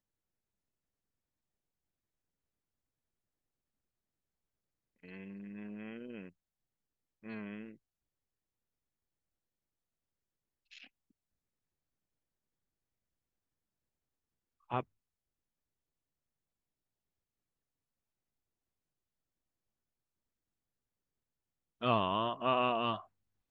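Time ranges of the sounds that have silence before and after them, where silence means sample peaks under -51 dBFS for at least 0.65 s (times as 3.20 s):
5.04–6.29 s
7.24–7.74 s
10.72–10.87 s
14.70–14.83 s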